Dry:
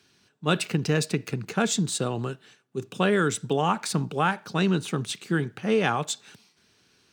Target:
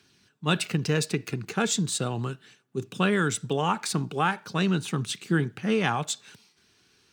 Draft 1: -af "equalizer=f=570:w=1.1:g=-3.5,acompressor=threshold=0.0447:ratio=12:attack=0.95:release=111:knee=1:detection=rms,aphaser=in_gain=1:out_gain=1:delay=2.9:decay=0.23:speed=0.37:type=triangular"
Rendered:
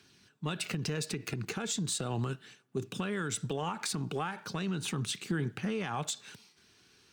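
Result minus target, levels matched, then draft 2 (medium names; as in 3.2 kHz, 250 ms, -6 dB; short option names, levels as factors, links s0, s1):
compression: peak gain reduction +14 dB
-af "equalizer=f=570:w=1.1:g=-3.5,aphaser=in_gain=1:out_gain=1:delay=2.9:decay=0.23:speed=0.37:type=triangular"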